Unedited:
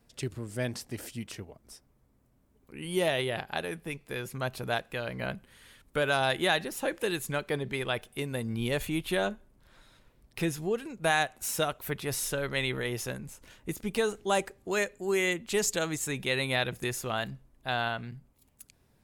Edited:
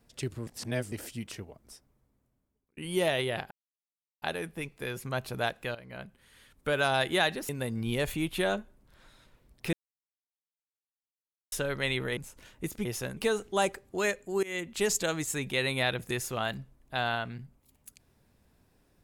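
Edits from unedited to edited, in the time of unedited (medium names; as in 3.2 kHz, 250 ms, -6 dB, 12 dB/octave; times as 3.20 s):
0.47–0.92 s: reverse
1.60–2.77 s: fade out
3.51 s: insert silence 0.71 s
5.04–6.11 s: fade in, from -14 dB
6.78–8.22 s: delete
10.46–12.25 s: mute
12.90–13.22 s: move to 13.90 s
15.16–15.44 s: fade in, from -23 dB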